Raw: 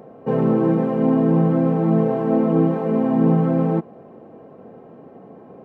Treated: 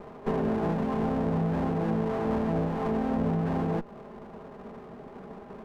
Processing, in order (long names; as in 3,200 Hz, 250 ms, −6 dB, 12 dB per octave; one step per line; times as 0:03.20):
lower of the sound and its delayed copy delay 4.9 ms
downward compressor 4 to 1, threshold −26 dBFS, peak gain reduction 11 dB